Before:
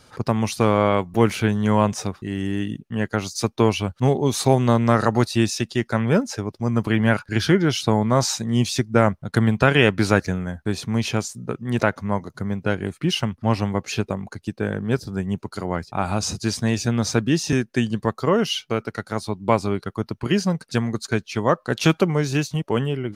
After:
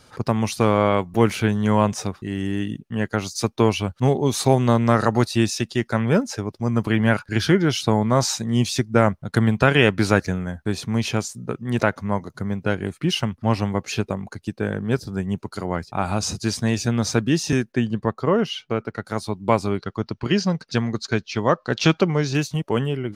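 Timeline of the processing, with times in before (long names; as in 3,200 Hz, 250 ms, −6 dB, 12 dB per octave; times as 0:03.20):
0:17.72–0:19.05: low-pass filter 2,100 Hz 6 dB per octave
0:19.78–0:22.35: high shelf with overshoot 7,500 Hz −13 dB, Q 1.5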